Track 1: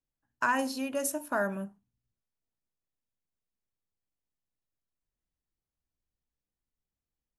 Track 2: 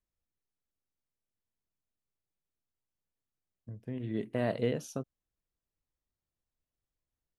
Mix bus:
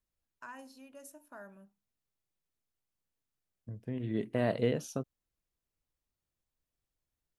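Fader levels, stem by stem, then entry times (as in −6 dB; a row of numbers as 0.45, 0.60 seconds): −20.0, +1.0 decibels; 0.00, 0.00 seconds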